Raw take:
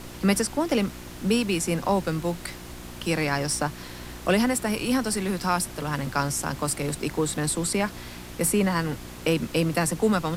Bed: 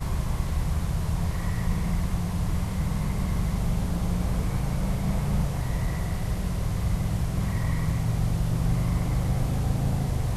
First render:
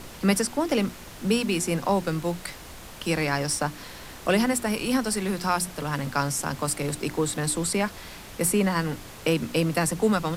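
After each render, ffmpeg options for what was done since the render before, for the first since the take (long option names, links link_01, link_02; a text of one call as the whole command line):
ffmpeg -i in.wav -af "bandreject=frequency=60:width_type=h:width=4,bandreject=frequency=120:width_type=h:width=4,bandreject=frequency=180:width_type=h:width=4,bandreject=frequency=240:width_type=h:width=4,bandreject=frequency=300:width_type=h:width=4,bandreject=frequency=360:width_type=h:width=4" out.wav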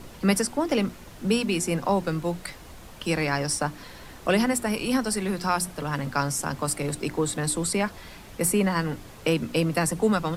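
ffmpeg -i in.wav -af "afftdn=noise_reduction=6:noise_floor=-43" out.wav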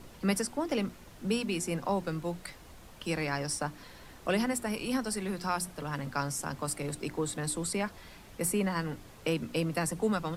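ffmpeg -i in.wav -af "volume=-7dB" out.wav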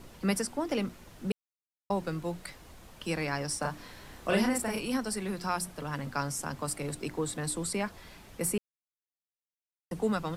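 ffmpeg -i in.wav -filter_complex "[0:a]asettb=1/sr,asplit=3[link_01][link_02][link_03];[link_01]atrim=end=3.594[link_04];[link_02]atrim=start=3.59:end=4.81,asetpts=PTS-STARTPTS,afade=type=in:duration=0.004:curve=qsin,afade=type=out:start_time=1.216:duration=0.004:curve=qsin,asplit=2[link_05][link_06];[link_06]adelay=36,volume=-2dB[link_07];[link_05][link_07]amix=inputs=2:normalize=0,atrim=end_sample=53802[link_08];[link_03]atrim=start=4.806[link_09];[link_04][link_08]acrossfade=duration=0.004:curve1=hsin:curve2=qsin[link_10];[link_10][link_09]acrossfade=duration=0.004:curve1=qsin:curve2=hsin,asplit=5[link_11][link_12][link_13][link_14][link_15];[link_11]atrim=end=1.32,asetpts=PTS-STARTPTS,afade=type=out:start_time=1.316:duration=0.004:curve=hsin[link_16];[link_12]atrim=start=1.32:end=1.9,asetpts=PTS-STARTPTS,volume=0[link_17];[link_13]atrim=start=1.9:end=8.58,asetpts=PTS-STARTPTS,afade=type=in:duration=0.004:curve=hsin,afade=type=out:start_time=6.676:duration=0.004:curve=hsin[link_18];[link_14]atrim=start=8.58:end=9.91,asetpts=PTS-STARTPTS,volume=0[link_19];[link_15]atrim=start=9.91,asetpts=PTS-STARTPTS,afade=type=in:duration=0.004:curve=hsin[link_20];[link_16][link_17][link_18][link_19][link_20]concat=n=5:v=0:a=1" out.wav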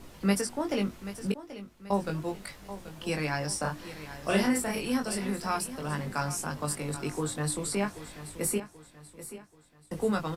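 ffmpeg -i in.wav -filter_complex "[0:a]asplit=2[link_01][link_02];[link_02]adelay=20,volume=-4.5dB[link_03];[link_01][link_03]amix=inputs=2:normalize=0,aecho=1:1:783|1566|2349|3132:0.211|0.0867|0.0355|0.0146" out.wav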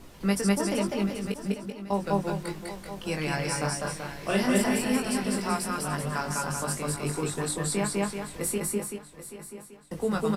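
ffmpeg -i in.wav -af "aecho=1:1:200|205|384:0.668|0.501|0.447" out.wav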